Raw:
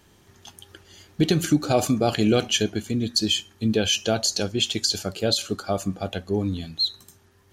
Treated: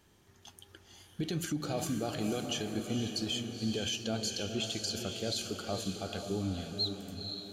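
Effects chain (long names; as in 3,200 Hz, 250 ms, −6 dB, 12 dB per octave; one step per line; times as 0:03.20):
brickwall limiter −17 dBFS, peak gain reduction 9 dB
on a send: feedback delay with all-pass diffusion 491 ms, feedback 53%, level −6 dB
on the sum: level −8.5 dB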